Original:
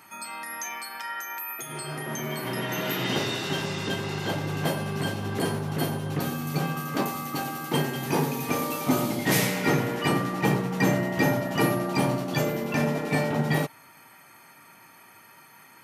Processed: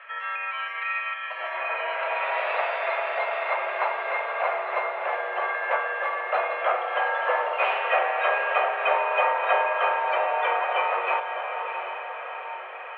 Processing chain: in parallel at +2 dB: compression, threshold -33 dBFS, peak gain reduction 14 dB; on the sum: echo that smears into a reverb 867 ms, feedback 59%, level -7 dB; tape speed +22%; mistuned SSB +190 Hz 400–2400 Hz; trim +1.5 dB

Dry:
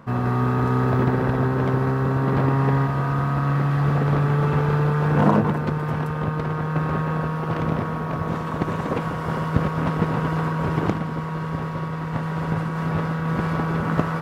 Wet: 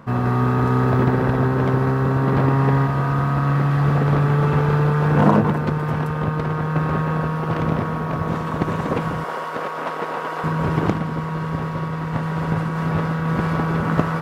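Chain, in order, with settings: 9.24–10.44 s: Chebyshev high-pass 540 Hz, order 2; trim +2.5 dB

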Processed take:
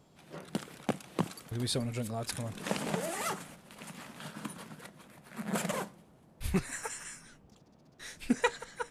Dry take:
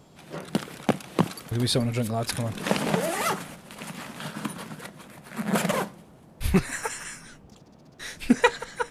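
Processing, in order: dynamic bell 7.8 kHz, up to +5 dB, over -49 dBFS, Q 1.7; trim -9 dB

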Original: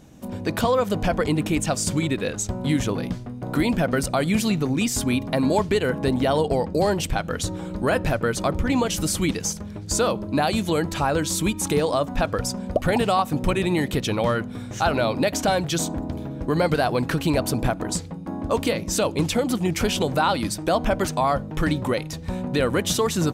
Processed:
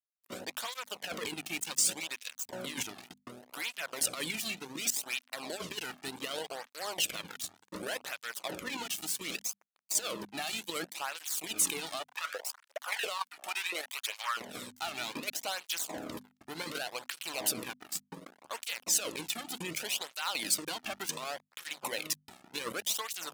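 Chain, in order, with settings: dynamic bell 2.7 kHz, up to +7 dB, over -44 dBFS, Q 1.7; trance gate "..x....xx." 101 bpm -12 dB; compressor with a negative ratio -24 dBFS, ratio -0.5; crossover distortion -35 dBFS; peak limiter -22 dBFS, peak gain reduction 12 dB; tilt EQ +3.5 dB/octave; 12.00–14.37 s: LFO high-pass saw up 2.9 Hz 470–1900 Hz; hum notches 50/100/150/200/250 Hz; cancelling through-zero flanger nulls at 0.67 Hz, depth 2.1 ms

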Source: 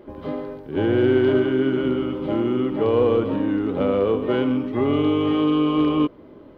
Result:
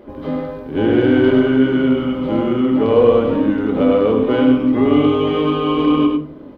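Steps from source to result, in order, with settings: delay 100 ms -5 dB; on a send at -6 dB: reverberation RT60 0.45 s, pre-delay 4 ms; on the sum: trim +3.5 dB

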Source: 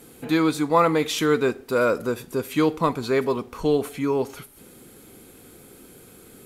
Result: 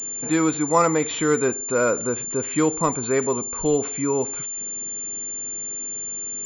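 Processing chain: class-D stage that switches slowly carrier 7.2 kHz

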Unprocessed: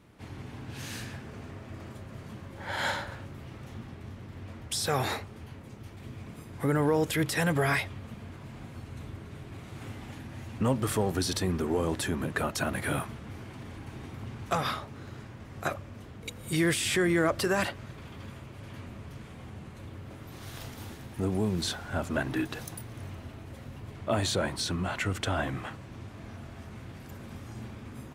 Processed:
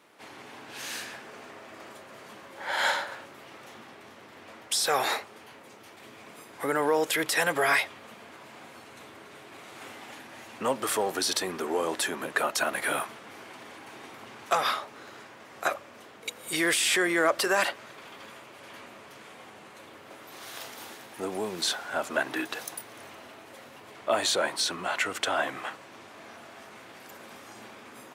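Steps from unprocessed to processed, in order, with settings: high-pass 500 Hz 12 dB/octave; trim +5 dB

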